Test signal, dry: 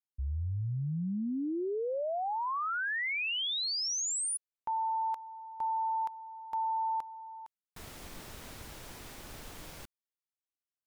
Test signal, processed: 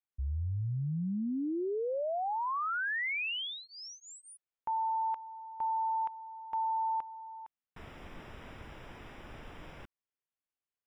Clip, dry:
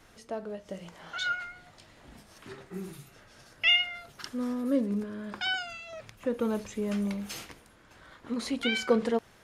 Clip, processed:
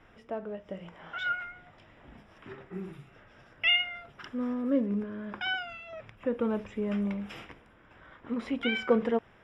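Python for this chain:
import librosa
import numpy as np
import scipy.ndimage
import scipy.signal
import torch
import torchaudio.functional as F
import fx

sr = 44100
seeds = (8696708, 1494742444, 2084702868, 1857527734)

y = scipy.signal.savgol_filter(x, 25, 4, mode='constant')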